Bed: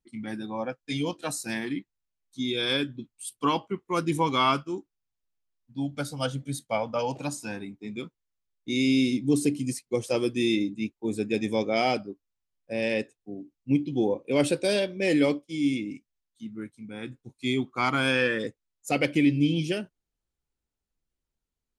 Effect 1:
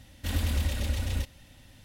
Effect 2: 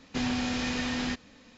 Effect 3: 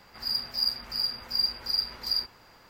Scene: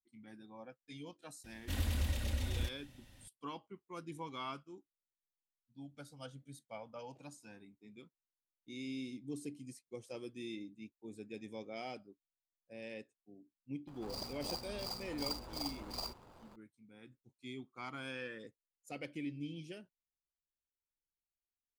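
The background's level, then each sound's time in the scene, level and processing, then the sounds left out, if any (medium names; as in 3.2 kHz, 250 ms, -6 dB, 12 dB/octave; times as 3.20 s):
bed -20 dB
1.44 s: add 1 -7 dB
13.87 s: add 3 -0.5 dB + median filter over 25 samples
not used: 2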